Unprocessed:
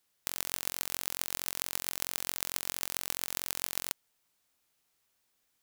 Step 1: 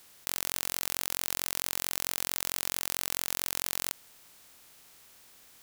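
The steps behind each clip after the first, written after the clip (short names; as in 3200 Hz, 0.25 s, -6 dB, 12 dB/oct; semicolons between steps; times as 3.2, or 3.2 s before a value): per-bin compression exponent 0.6; in parallel at +3 dB: negative-ratio compressor -37 dBFS; on the sum: gain -6 dB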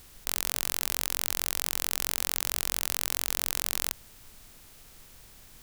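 added noise brown -57 dBFS; gain +2.5 dB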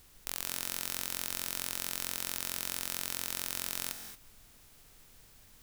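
reverb, pre-delay 3 ms, DRR 7 dB; gain -7 dB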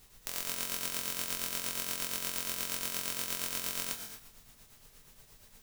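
two-slope reverb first 0.49 s, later 1.7 s, DRR -0.5 dB; tremolo triangle 8.5 Hz, depth 55%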